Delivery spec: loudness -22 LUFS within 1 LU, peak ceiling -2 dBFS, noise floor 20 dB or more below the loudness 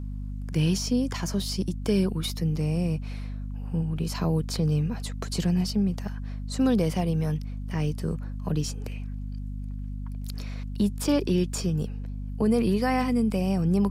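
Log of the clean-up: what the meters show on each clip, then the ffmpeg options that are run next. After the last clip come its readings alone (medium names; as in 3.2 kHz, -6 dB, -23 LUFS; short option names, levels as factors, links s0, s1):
hum 50 Hz; highest harmonic 250 Hz; hum level -31 dBFS; loudness -28.0 LUFS; peak level -12.5 dBFS; loudness target -22.0 LUFS
-> -af "bandreject=f=50:t=h:w=6,bandreject=f=100:t=h:w=6,bandreject=f=150:t=h:w=6,bandreject=f=200:t=h:w=6,bandreject=f=250:t=h:w=6"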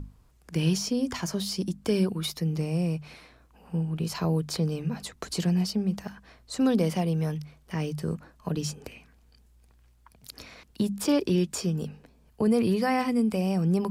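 hum not found; loudness -28.0 LUFS; peak level -14.5 dBFS; loudness target -22.0 LUFS
-> -af "volume=2"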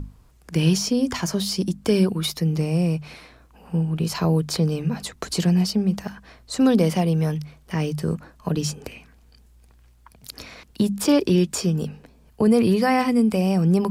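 loudness -22.0 LUFS; peak level -8.5 dBFS; noise floor -54 dBFS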